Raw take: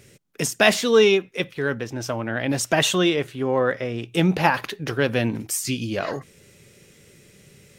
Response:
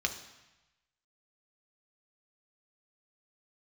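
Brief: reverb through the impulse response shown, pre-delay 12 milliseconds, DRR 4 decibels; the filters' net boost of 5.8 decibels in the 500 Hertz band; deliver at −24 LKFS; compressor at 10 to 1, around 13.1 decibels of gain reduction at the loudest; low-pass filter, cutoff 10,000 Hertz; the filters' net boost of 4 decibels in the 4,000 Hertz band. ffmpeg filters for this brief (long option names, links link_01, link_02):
-filter_complex "[0:a]lowpass=10000,equalizer=frequency=500:width_type=o:gain=7,equalizer=frequency=4000:width_type=o:gain=5,acompressor=threshold=-19dB:ratio=10,asplit=2[link_01][link_02];[1:a]atrim=start_sample=2205,adelay=12[link_03];[link_02][link_03]afir=irnorm=-1:irlink=0,volume=-9.5dB[link_04];[link_01][link_04]amix=inputs=2:normalize=0"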